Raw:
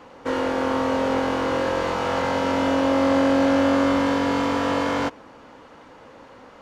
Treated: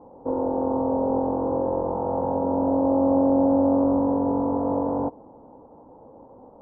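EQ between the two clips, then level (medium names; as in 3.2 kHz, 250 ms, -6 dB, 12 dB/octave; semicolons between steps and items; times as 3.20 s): elliptic low-pass 890 Hz, stop band 70 dB; 0.0 dB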